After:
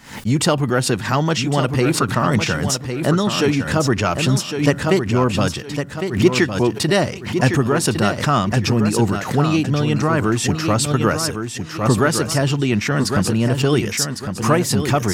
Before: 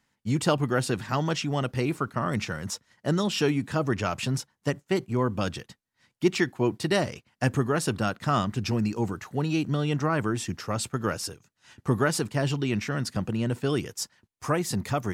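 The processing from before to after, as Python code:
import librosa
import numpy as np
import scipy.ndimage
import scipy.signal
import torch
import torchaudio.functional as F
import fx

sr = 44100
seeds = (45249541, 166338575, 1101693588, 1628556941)

p1 = 10.0 ** (-21.5 / 20.0) * np.tanh(x / 10.0 ** (-21.5 / 20.0))
p2 = x + (p1 * librosa.db_to_amplitude(-11.0))
p3 = fx.rider(p2, sr, range_db=4, speed_s=0.5)
p4 = fx.echo_feedback(p3, sr, ms=1107, feedback_pct=21, wet_db=-7.5)
p5 = fx.pre_swell(p4, sr, db_per_s=110.0)
y = p5 * librosa.db_to_amplitude(7.0)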